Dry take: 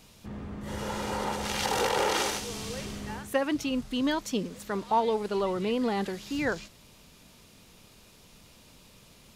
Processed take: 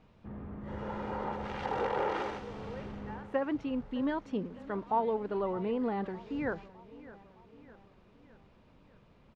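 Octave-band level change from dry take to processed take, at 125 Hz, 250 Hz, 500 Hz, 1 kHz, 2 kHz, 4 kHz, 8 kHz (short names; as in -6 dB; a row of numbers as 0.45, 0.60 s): -4.0 dB, -4.0 dB, -4.0 dB, -4.5 dB, -8.5 dB, -17.5 dB, under -25 dB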